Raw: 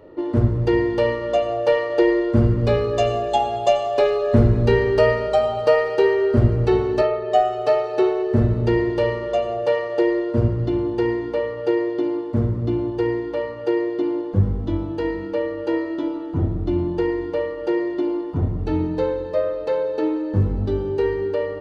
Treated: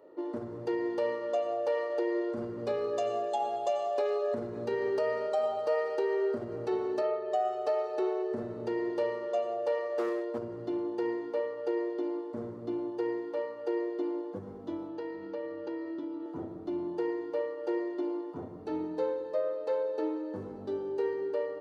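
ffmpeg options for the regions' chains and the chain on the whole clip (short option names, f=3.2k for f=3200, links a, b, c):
-filter_complex "[0:a]asettb=1/sr,asplit=3[a][b][c];[a]atrim=end=9.824[d];[b]atrim=start=9.82:end=10.38,asetpts=PTS-STARTPTS,afade=t=in:d=0.004:c=qsin,afade=t=out:st=0.556:d=0.004:c=qsin,volume=17.5dB,asoftclip=hard,volume=-17.5dB,asplit=2[e][f];[f]adelay=24,volume=-10.5dB[g];[e][g]amix=inputs=2:normalize=0,atrim=end_sample=24696[h];[c]atrim=start=10.376[i];[d][h]acrossfade=d=0.004:c1=hsin:c2=qsin[j];[j][i]acrossfade=d=0.004:c1=qsin:c2=hsin,asettb=1/sr,asplit=3[k][l][m];[k]atrim=end=14.884[n];[l]atrim=start=14.88:end=16.26,asetpts=PTS-STARTPTS,afade=t=in:d=0.004:c=qsin,afade=t=out:st=1.376:d=0.004:c=qsin,lowpass=f=5.9k:w=0.5412,lowpass=f=5.9k:w=1.3066,asubboost=boost=12:cutoff=240,acompressor=threshold=-24dB:ratio=3:attack=3.2:release=140:knee=1:detection=peak[o];[m]atrim=start=16.256[p];[n][o]acrossfade=d=0.004:c1=hsin:c2=qsin[q];[q][p]acrossfade=d=0.004:c1=qsin:c2=hsin,alimiter=limit=-12dB:level=0:latency=1:release=89,highpass=350,equalizer=f=2.7k:t=o:w=1.5:g=-7,volume=-7.5dB"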